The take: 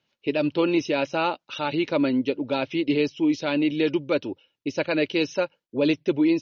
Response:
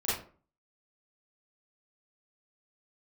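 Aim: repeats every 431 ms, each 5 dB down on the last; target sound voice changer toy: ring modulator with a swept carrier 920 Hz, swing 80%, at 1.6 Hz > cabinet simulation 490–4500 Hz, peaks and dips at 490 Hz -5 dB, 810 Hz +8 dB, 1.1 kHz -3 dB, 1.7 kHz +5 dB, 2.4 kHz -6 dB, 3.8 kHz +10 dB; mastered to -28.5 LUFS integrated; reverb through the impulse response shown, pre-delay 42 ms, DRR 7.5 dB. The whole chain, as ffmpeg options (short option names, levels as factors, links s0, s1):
-filter_complex "[0:a]aecho=1:1:431|862|1293|1724|2155|2586|3017:0.562|0.315|0.176|0.0988|0.0553|0.031|0.0173,asplit=2[s0][s1];[1:a]atrim=start_sample=2205,adelay=42[s2];[s1][s2]afir=irnorm=-1:irlink=0,volume=0.178[s3];[s0][s3]amix=inputs=2:normalize=0,aeval=exprs='val(0)*sin(2*PI*920*n/s+920*0.8/1.6*sin(2*PI*1.6*n/s))':c=same,highpass=490,equalizer=f=490:t=q:w=4:g=-5,equalizer=f=810:t=q:w=4:g=8,equalizer=f=1100:t=q:w=4:g=-3,equalizer=f=1700:t=q:w=4:g=5,equalizer=f=2400:t=q:w=4:g=-6,equalizer=f=3800:t=q:w=4:g=10,lowpass=f=4500:w=0.5412,lowpass=f=4500:w=1.3066,volume=0.596"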